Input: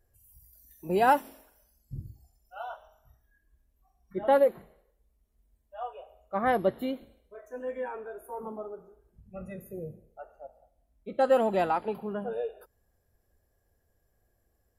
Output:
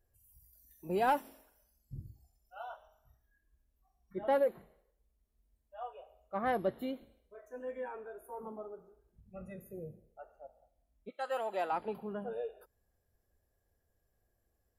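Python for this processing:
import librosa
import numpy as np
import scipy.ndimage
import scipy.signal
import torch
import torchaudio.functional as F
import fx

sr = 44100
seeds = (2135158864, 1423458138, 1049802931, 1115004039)

y = fx.highpass(x, sr, hz=fx.line((11.09, 1300.0), (11.71, 390.0)), slope=12, at=(11.09, 11.71), fade=0.02)
y = 10.0 ** (-14.0 / 20.0) * np.tanh(y / 10.0 ** (-14.0 / 20.0))
y = y * 10.0 ** (-6.0 / 20.0)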